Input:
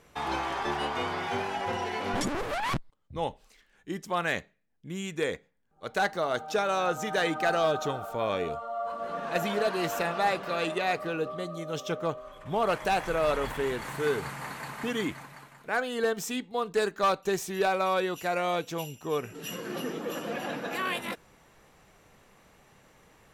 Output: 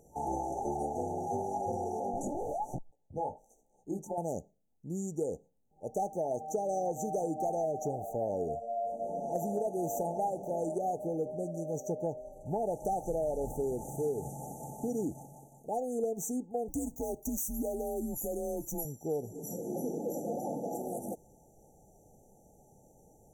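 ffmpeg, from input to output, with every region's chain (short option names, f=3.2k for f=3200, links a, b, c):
-filter_complex "[0:a]asettb=1/sr,asplit=3[a][b][c];[a]atrim=end=2.004[d];[b]atrim=start=2:end=4.18,asetpts=PTS-STARTPTS,afade=t=in:d=0.004:c=qsin,afade=t=out:st=2.176:d=0.004:c=qsin,equalizer=f=1.2k:t=o:w=2.8:g=9.5,acompressor=threshold=-24dB:ratio=12:attack=3.2:release=140:knee=1:detection=peak,flanger=delay=15.5:depth=5:speed=1.2[e];[c]atrim=start=4.176[f];[d][e]acrossfade=d=0.004:c1=hsin:c2=qsin[g];[g][f]acrossfade=d=0.004:c1=qsin:c2=hsin,asettb=1/sr,asplit=3[h][i][j];[h]atrim=end=16.684[k];[i]atrim=start=16.68:end=18.85,asetpts=PTS-STARTPTS,afade=t=in:d=0.004:c=qsin,afade=t=out:st=2.166:d=0.004:c=qsin,aemphasis=mode=production:type=50fm,acompressor=threshold=-32dB:ratio=2.5:attack=3.2:release=140:knee=1:detection=peak,afreqshift=-150[l];[j]atrim=start=18.846[m];[k][l]acrossfade=d=0.004:c1=hsin:c2=qsin[n];[n][m]acrossfade=d=0.004:c1=qsin:c2=hsin,afftfilt=real='re*(1-between(b*sr/4096,890,5800))':imag='im*(1-between(b*sr/4096,890,5800))':win_size=4096:overlap=0.75,acompressor=threshold=-29dB:ratio=6"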